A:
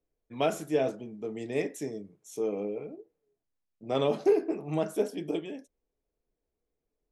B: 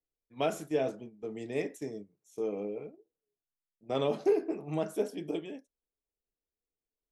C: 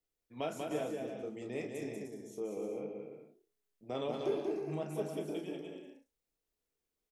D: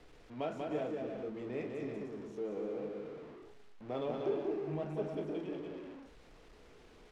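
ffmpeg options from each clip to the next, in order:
ffmpeg -i in.wav -af "agate=range=-10dB:threshold=-40dB:ratio=16:detection=peak,volume=-3dB" out.wav
ffmpeg -i in.wav -filter_complex "[0:a]acompressor=threshold=-56dB:ratio=1.5,asplit=2[link_01][link_02];[link_02]adelay=33,volume=-8dB[link_03];[link_01][link_03]amix=inputs=2:normalize=0,asplit=2[link_04][link_05];[link_05]aecho=0:1:190|304|372.4|413.4|438.1:0.631|0.398|0.251|0.158|0.1[link_06];[link_04][link_06]amix=inputs=2:normalize=0,volume=2.5dB" out.wav
ffmpeg -i in.wav -af "aeval=exprs='val(0)+0.5*0.00531*sgn(val(0))':channel_layout=same,adynamicsmooth=sensitivity=1.5:basefreq=3000,volume=-1dB" out.wav

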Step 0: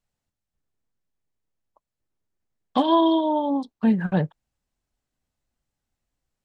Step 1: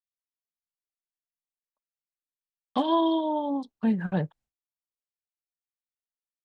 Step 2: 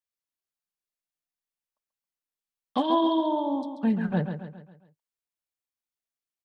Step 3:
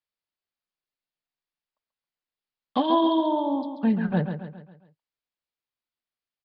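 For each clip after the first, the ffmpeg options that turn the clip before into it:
ffmpeg -i in.wav -af "agate=range=-33dB:threshold=-47dB:ratio=3:detection=peak,volume=-5dB" out.wav
ffmpeg -i in.wav -af "aecho=1:1:136|272|408|544|680:0.398|0.187|0.0879|0.0413|0.0194" out.wav
ffmpeg -i in.wav -af "aresample=11025,aresample=44100,volume=2dB" out.wav

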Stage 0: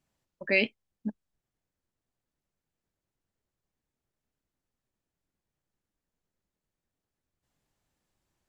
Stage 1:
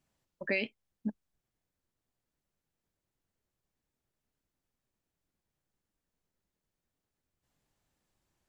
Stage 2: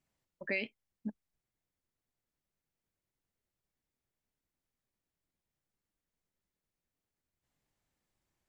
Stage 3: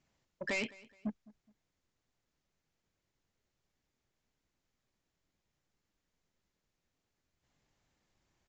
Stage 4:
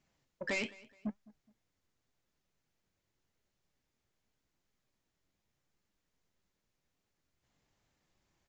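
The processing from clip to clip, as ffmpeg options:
ffmpeg -i in.wav -af "acompressor=threshold=-28dB:ratio=6" out.wav
ffmpeg -i in.wav -af "equalizer=frequency=2100:width=4.3:gain=3.5,volume=-4.5dB" out.wav
ffmpeg -i in.wav -af "aresample=16000,asoftclip=type=tanh:threshold=-37.5dB,aresample=44100,aecho=1:1:210|420:0.0794|0.0254,volume=6.5dB" out.wav
ffmpeg -i in.wav -af "flanger=delay=4.6:depth=6.5:regen=79:speed=0.85:shape=triangular,volume=4.5dB" out.wav

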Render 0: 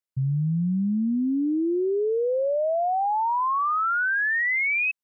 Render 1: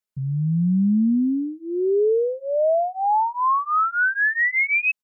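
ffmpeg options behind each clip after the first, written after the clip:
ffmpeg -i in.wav -af "aecho=1:1:4.7:0.97" out.wav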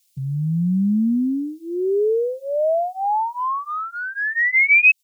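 ffmpeg -i in.wav -filter_complex "[0:a]acrossover=split=100|990[link_01][link_02][link_03];[link_03]acompressor=threshold=-29dB:ratio=10[link_04];[link_01][link_02][link_04]amix=inputs=3:normalize=0,aexciter=amount=16:drive=2.7:freq=2200" out.wav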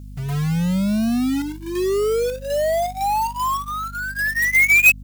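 ffmpeg -i in.wav -af "acrusher=bits=2:mode=log:mix=0:aa=0.000001,aeval=exprs='val(0)+0.0178*(sin(2*PI*50*n/s)+sin(2*PI*2*50*n/s)/2+sin(2*PI*3*50*n/s)/3+sin(2*PI*4*50*n/s)/4+sin(2*PI*5*50*n/s)/5)':channel_layout=same" out.wav

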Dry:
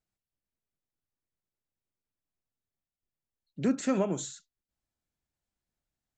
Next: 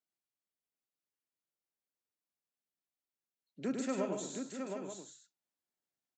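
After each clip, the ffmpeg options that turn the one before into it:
ffmpeg -i in.wav -filter_complex "[0:a]highpass=240,asplit=2[link_01][link_02];[link_02]aecho=0:1:103|146|340|672|716|879:0.562|0.376|0.112|0.1|0.531|0.299[link_03];[link_01][link_03]amix=inputs=2:normalize=0,volume=-7dB" out.wav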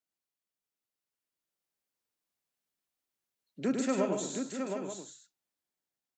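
ffmpeg -i in.wav -af "dynaudnorm=framelen=570:gausssize=5:maxgain=5.5dB" out.wav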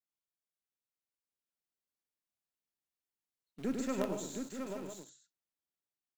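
ffmpeg -i in.wav -filter_complex "[0:a]lowshelf=frequency=220:gain=4,asplit=2[link_01][link_02];[link_02]acrusher=bits=4:dc=4:mix=0:aa=0.000001,volume=-4dB[link_03];[link_01][link_03]amix=inputs=2:normalize=0,volume=-9dB" out.wav

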